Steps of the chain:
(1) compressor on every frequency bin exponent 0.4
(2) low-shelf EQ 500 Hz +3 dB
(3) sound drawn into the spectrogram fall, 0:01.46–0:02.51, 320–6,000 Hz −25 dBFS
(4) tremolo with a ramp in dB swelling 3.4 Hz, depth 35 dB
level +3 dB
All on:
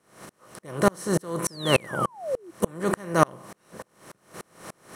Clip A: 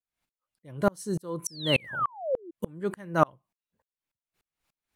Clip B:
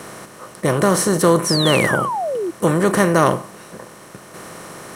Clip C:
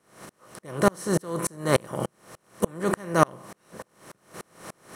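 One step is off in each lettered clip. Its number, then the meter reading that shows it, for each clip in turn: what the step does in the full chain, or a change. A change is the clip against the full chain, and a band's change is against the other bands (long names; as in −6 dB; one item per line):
1, 8 kHz band −3.5 dB
4, change in crest factor −9.0 dB
3, 4 kHz band −5.5 dB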